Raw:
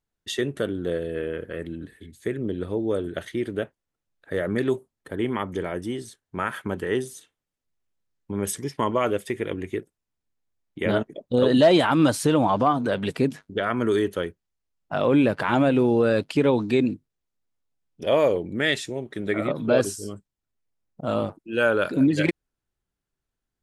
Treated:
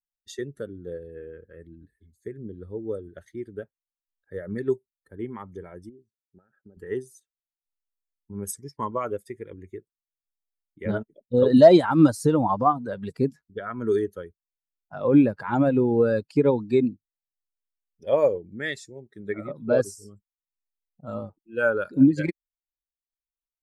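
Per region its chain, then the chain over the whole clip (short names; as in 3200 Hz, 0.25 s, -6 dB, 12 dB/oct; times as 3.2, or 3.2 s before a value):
5.89–6.77 low shelf 230 Hz -10.5 dB + compressor 16:1, threshold -28 dBFS + running mean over 42 samples
whole clip: per-bin expansion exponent 1.5; bell 2900 Hz -14 dB 0.72 oct; upward expander 1.5:1, over -33 dBFS; gain +6.5 dB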